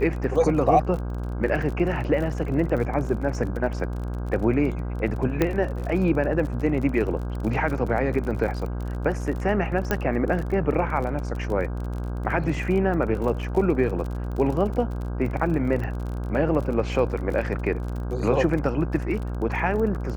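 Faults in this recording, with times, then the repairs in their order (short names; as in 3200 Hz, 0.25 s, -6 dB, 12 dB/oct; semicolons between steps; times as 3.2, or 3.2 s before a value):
buzz 60 Hz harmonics 27 -29 dBFS
crackle 37/s -31 dBFS
5.42 pop -8 dBFS
9.91 pop -9 dBFS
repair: de-click; de-hum 60 Hz, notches 27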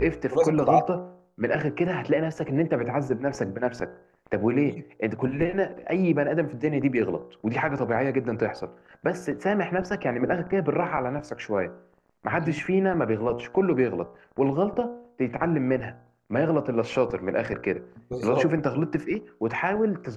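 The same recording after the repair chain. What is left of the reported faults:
5.42 pop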